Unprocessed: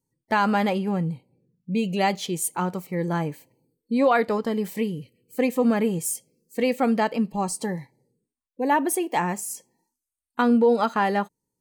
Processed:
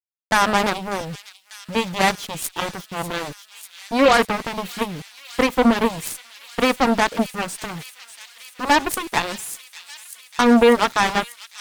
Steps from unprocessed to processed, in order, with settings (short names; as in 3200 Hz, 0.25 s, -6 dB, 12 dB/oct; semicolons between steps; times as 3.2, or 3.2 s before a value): sample gate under -36.5 dBFS; added harmonics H 3 -19 dB, 6 -32 dB, 7 -14 dB, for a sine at -10.5 dBFS; thin delay 0.594 s, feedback 80%, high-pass 3200 Hz, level -11 dB; gain +5.5 dB